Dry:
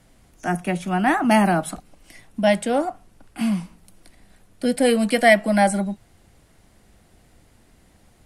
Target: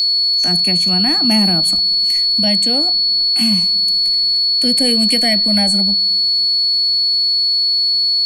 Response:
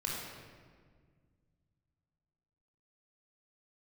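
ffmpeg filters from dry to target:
-filter_complex "[0:a]acrossover=split=340[a][b];[b]acompressor=threshold=-39dB:ratio=2[c];[a][c]amix=inputs=2:normalize=0,aeval=exprs='val(0)+0.0501*sin(2*PI*4400*n/s)':c=same,aexciter=amount=4:drive=2.6:freq=2.1k,asplit=2[d][e];[1:a]atrim=start_sample=2205,asetrate=66150,aresample=44100[f];[e][f]afir=irnorm=-1:irlink=0,volume=-25dB[g];[d][g]amix=inputs=2:normalize=0,volume=3dB"

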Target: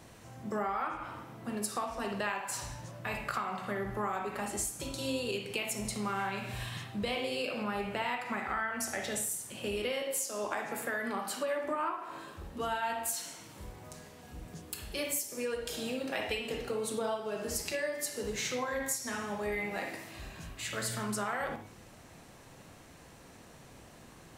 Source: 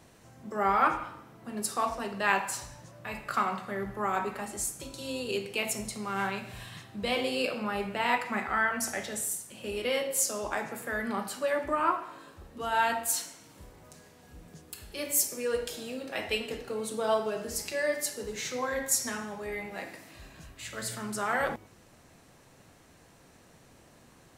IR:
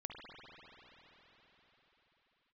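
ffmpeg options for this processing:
-filter_complex "[0:a]asettb=1/sr,asplit=3[a][b][c];[a]atrim=end=10.024[d];[b]atrim=start=10.02:end=12.1,asetpts=PTS-STARTPTS,afade=t=in:d=0.004:c=qsin,afade=t=out:st=2.076:d=0.004:c=qsin,highpass=190[e];[c]atrim=start=12.096[f];[d][e]acrossfade=d=0.004:c1=hsin:c2=qsin[g];[g][f]acrossfade=d=0.004:c1=qsin:c2=hsin,acompressor=threshold=-34dB:ratio=16[h];[1:a]atrim=start_sample=2205,atrim=end_sample=3969[i];[h][i]afir=irnorm=-1:irlink=0,volume=8.5dB"

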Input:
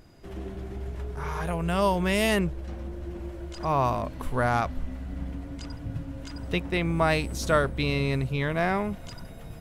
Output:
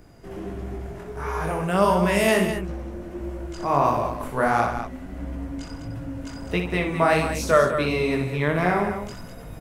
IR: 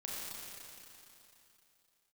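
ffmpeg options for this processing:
-filter_complex "[0:a]equalizer=f=3.7k:w=1.4:g=-6,acrossover=split=170|5200[a][b][c];[a]acompressor=threshold=-40dB:ratio=6[d];[d][b][c]amix=inputs=3:normalize=0,flanger=delay=16.5:depth=6.3:speed=1.5,aecho=1:1:62|135|203:0.447|0.15|0.355,volume=7dB"

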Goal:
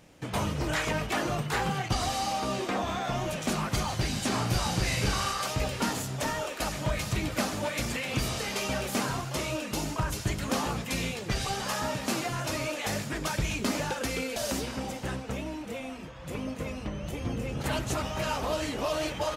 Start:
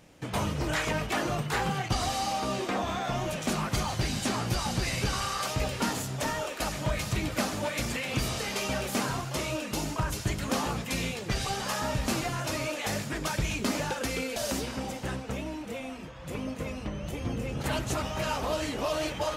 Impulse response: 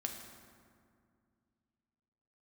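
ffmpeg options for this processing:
-filter_complex "[0:a]asplit=3[a][b][c];[a]afade=t=out:st=4.31:d=0.02[d];[b]asplit=2[e][f];[f]adelay=41,volume=-3.5dB[g];[e][g]amix=inputs=2:normalize=0,afade=t=in:st=4.31:d=0.02,afade=t=out:st=5.31:d=0.02[h];[c]afade=t=in:st=5.31:d=0.02[i];[d][h][i]amix=inputs=3:normalize=0,asettb=1/sr,asplit=3[j][k][l];[j]atrim=end=11.884[m];[k]atrim=start=11.88:end=12.3,asetpts=PTS-STARTPTS,afade=t=in:d=0.004:c=qsin,afade=t=out:st=0.416:d=0.004:c=qsin,highpass=160[n];[l]atrim=start=12.296[o];[m][n]acrossfade=d=0.004:c1=hsin:c2=qsin[p];[p][o]acrossfade=d=0.004:c1=qsin:c2=hsin"

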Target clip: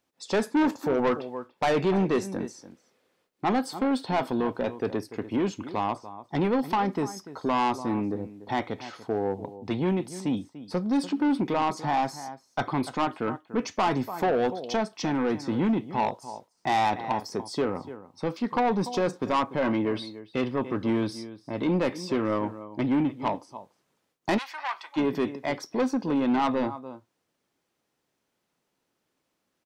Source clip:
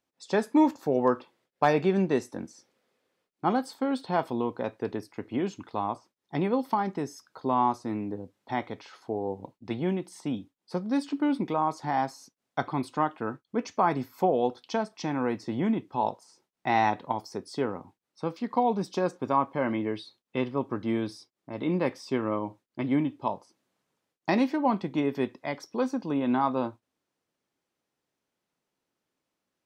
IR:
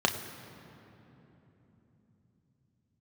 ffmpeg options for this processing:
-filter_complex "[0:a]asplit=2[a][b];[b]adelay=291.5,volume=-17dB,highshelf=f=4k:g=-6.56[c];[a][c]amix=inputs=2:normalize=0,asoftclip=type=tanh:threshold=-24.5dB,asplit=3[d][e][f];[d]afade=t=out:st=24.37:d=0.02[g];[e]highpass=f=960:w=0.5412,highpass=f=960:w=1.3066,afade=t=in:st=24.37:d=0.02,afade=t=out:st=24.96:d=0.02[h];[f]afade=t=in:st=24.96:d=0.02[i];[g][h][i]amix=inputs=3:normalize=0,volume=5.5dB"

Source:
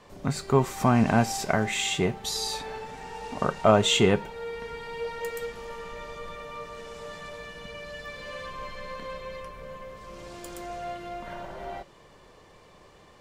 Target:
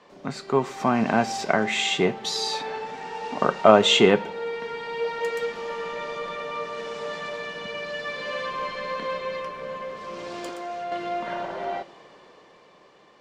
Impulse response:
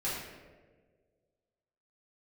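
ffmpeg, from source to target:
-filter_complex "[0:a]acrossover=split=170 6300:gain=0.0708 1 0.126[a][b][c];[a][b][c]amix=inputs=3:normalize=0,asettb=1/sr,asplit=3[d][e][f];[d]atrim=end=10.494[g];[e]atrim=start=10.49:end=10.92,asetpts=PTS-STARTPTS,afade=t=in:d=0.004:c=qsin,afade=t=out:st=0.426:d=0.004:c=qsin,acrossover=split=430|1400[h][i][j];[h]acompressor=threshold=-54dB:ratio=4[k];[i]acompressor=threshold=-42dB:ratio=4[l];[j]acompressor=threshold=-54dB:ratio=4[m];[k][l][m]amix=inputs=3:normalize=0[n];[f]atrim=start=10.916[o];[g][n]acrossfade=d=0.004:c1=hsin:c2=qsin[p];[p][o]acrossfade=d=0.004:c1=qsin:c2=hsin,asplit=2[q][r];[1:a]atrim=start_sample=2205,asetrate=57330,aresample=44100[s];[r][s]afir=irnorm=-1:irlink=0,volume=-23.5dB[t];[q][t]amix=inputs=2:normalize=0,dynaudnorm=f=160:g=17:m=8dB"

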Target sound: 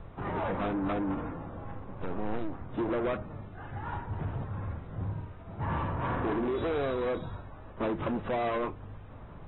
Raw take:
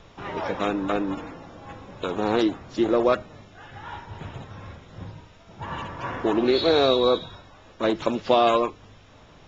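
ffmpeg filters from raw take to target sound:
-filter_complex "[0:a]asettb=1/sr,asplit=3[a][b][c];[a]atrim=end=1.644[d];[b]atrim=start=1.64:end=2.74,asetpts=PTS-STARTPTS,afade=t=in:d=0.004:c=qsin,afade=t=out:st=1.096:d=0.004:c=qsin,aeval=exprs='if(lt(val(0),0),0.251*val(0),val(0))':c=same[e];[c]atrim=start=2.736[f];[d][e]acrossfade=d=0.004:c1=hsin:c2=qsin[g];[g][f]acrossfade=d=0.004:c1=qsin:c2=hsin,lowpass=1k,equalizer=f=470:t=o:w=2.8:g=-8.5,acompressor=threshold=-29dB:ratio=10,asoftclip=type=tanh:threshold=-35.5dB,asettb=1/sr,asplit=3[h][i][j];[h]atrim=end=5.024[k];[i]atrim=start=5.02:end=6.37,asetpts=PTS-STARTPTS,afade=t=in:d=0.004:c=qsin,afade=t=out:st=1.346:d=0.004:c=qsin,asplit=2[l][m];[m]adelay=50,volume=-6dB[n];[l][n]amix=inputs=2:normalize=0,atrim=end_sample=59535[o];[j]atrim=start=6.366[p];[k][o]acrossfade=d=0.004:c1=hsin:c2=qsin[q];[q][p]acrossfade=d=0.004:c1=qsin:c2=hsin,volume=8.5dB" -ar 24000 -c:a aac -b:a 16k

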